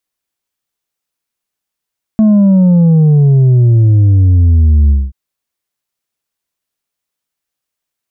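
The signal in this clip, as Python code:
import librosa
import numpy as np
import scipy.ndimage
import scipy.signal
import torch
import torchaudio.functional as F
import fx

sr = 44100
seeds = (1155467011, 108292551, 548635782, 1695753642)

y = fx.sub_drop(sr, level_db=-5.0, start_hz=220.0, length_s=2.93, drive_db=4, fade_s=0.22, end_hz=65.0)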